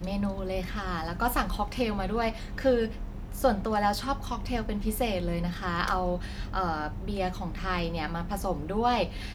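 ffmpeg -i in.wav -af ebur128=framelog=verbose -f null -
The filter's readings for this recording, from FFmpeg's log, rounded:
Integrated loudness:
  I:         -30.1 LUFS
  Threshold: -40.1 LUFS
Loudness range:
  LRA:         2.4 LU
  Threshold: -50.0 LUFS
  LRA low:   -31.3 LUFS
  LRA high:  -28.9 LUFS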